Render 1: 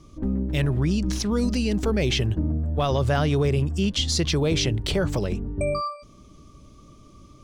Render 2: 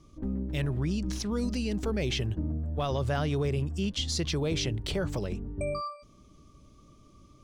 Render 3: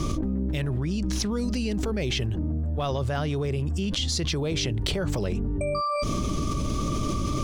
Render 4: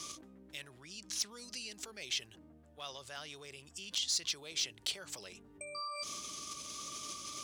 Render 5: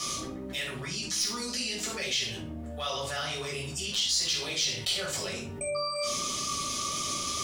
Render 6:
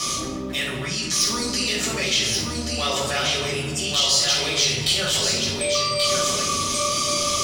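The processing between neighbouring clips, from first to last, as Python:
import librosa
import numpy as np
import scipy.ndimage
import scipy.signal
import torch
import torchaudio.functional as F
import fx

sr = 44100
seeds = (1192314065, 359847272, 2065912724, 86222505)

y1 = fx.attack_slew(x, sr, db_per_s=490.0)
y1 = y1 * librosa.db_to_amplitude(-7.0)
y2 = fx.env_flatten(y1, sr, amount_pct=100)
y3 = fx.bandpass_q(y2, sr, hz=7800.0, q=0.6)
y3 = np.clip(y3, -10.0 ** (-24.0 / 20.0), 10.0 ** (-24.0 / 20.0))
y3 = y3 * librosa.db_to_amplitude(-2.0)
y4 = fx.room_shoebox(y3, sr, seeds[0], volume_m3=460.0, walls='furnished', distance_m=6.3)
y4 = fx.env_flatten(y4, sr, amount_pct=50)
y4 = y4 * librosa.db_to_amplitude(-2.5)
y5 = y4 + 10.0 ** (-4.5 / 20.0) * np.pad(y4, (int(1132 * sr / 1000.0), 0))[:len(y4)]
y5 = fx.rev_freeverb(y5, sr, rt60_s=1.8, hf_ratio=0.5, predelay_ms=85, drr_db=9.0)
y5 = y5 * librosa.db_to_amplitude(8.0)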